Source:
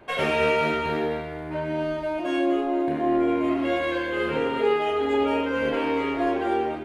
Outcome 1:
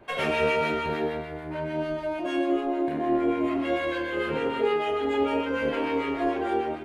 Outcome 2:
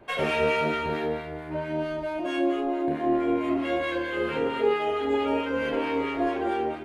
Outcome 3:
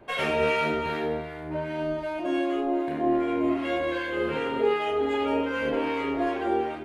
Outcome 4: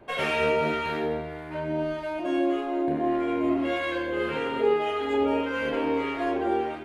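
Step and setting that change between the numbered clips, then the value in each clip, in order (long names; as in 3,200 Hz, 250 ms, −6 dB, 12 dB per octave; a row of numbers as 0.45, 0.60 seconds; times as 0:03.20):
two-band tremolo in antiphase, speed: 6.7, 4.5, 2.6, 1.7 Hertz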